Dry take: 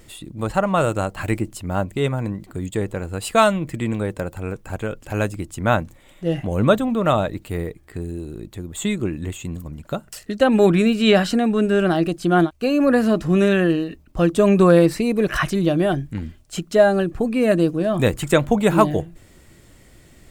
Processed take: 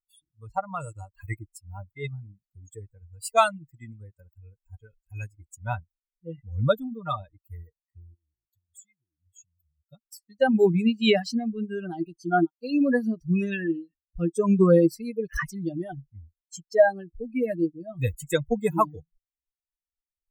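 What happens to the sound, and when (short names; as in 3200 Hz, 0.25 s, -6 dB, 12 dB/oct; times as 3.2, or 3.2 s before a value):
8.14–9.89 compressor, threshold -34 dBFS
whole clip: per-bin expansion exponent 3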